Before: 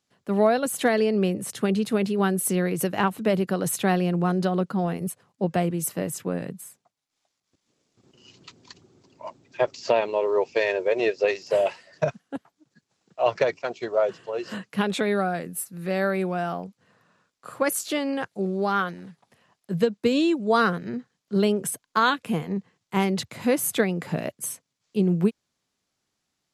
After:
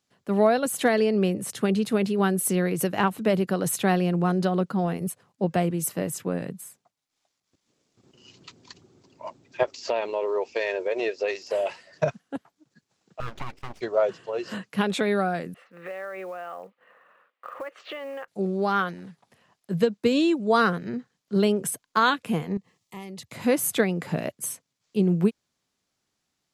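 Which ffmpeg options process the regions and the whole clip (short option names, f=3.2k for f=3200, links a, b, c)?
-filter_complex "[0:a]asettb=1/sr,asplit=3[a][b][c];[a]atrim=end=9.634[d];[b]atrim=start=9.63:end=11.7,asetpts=PTS-STARTPTS,afade=t=in:d=0.004:c=qsin,afade=t=out:st=2.066:d=0.004:c=qsin,equalizer=f=140:w=1.7:g=-14,acompressor=threshold=-24dB:ratio=2:attack=3.2:release=140:knee=1:detection=peak[e];[c]atrim=start=11.696[f];[d][e]acrossfade=d=0.004:c1=hsin:c2=qsin[g];[g][f]acrossfade=d=0.004:c1=qsin:c2=hsin,asettb=1/sr,asplit=3[h][i][j];[h]atrim=end=13.204[k];[i]atrim=start=13.2:end=13.81,asetpts=PTS-STARTPTS,afade=t=in:d=0.004:c=qsin,afade=t=out:st=0.606:d=0.004:c=qsin,aemphasis=mode=reproduction:type=bsi,aeval=exprs='abs(val(0))':c=same,acompressor=threshold=-33dB:ratio=2.5:attack=3.2:release=140:knee=1:detection=peak[l];[j]atrim=start=13.806[m];[k][l]acrossfade=d=0.004:c1=hsin:c2=qsin[n];[n][m]acrossfade=d=0.004:c1=qsin:c2=hsin,asettb=1/sr,asplit=3[o][p][q];[o]atrim=end=15.544[r];[p]atrim=start=15.54:end=18.28,asetpts=PTS-STARTPTS,afade=t=in:d=0.004:c=qsin,afade=t=out:st=2.736:d=0.004:c=qsin,highpass=420,equalizer=f=530:t=q:w=4:g=10,equalizer=f=780:t=q:w=4:g=3,equalizer=f=1.2k:t=q:w=4:g=9,equalizer=f=1.9k:t=q:w=4:g=8,equalizer=f=2.8k:t=q:w=4:g=5,lowpass=f=3.1k:w=0.5412,lowpass=f=3.1k:w=1.3066,acompressor=threshold=-34dB:ratio=5:attack=3.2:release=140:knee=1:detection=peak,acrusher=bits=7:mode=log:mix=0:aa=0.000001[s];[q]atrim=start=18.276[t];[r][s]acrossfade=d=0.004:c1=hsin:c2=qsin[u];[u][t]acrossfade=d=0.004:c1=qsin:c2=hsin,asettb=1/sr,asplit=3[v][w][x];[v]atrim=end=22.574[y];[w]atrim=start=22.57:end=23.32,asetpts=PTS-STARTPTS,afade=t=in:d=0.004:c=qsin,afade=t=out:st=0.746:d=0.004:c=qsin,highshelf=f=5.6k:g=8,acompressor=threshold=-48dB:ratio=2:attack=3.2:release=140:knee=1:detection=peak,asuperstop=centerf=1500:order=20:qfactor=4.8[z];[x]atrim=start=23.316[aa];[y][z]acrossfade=d=0.004:c1=hsin:c2=qsin[ab];[ab][aa]acrossfade=d=0.004:c1=qsin:c2=hsin"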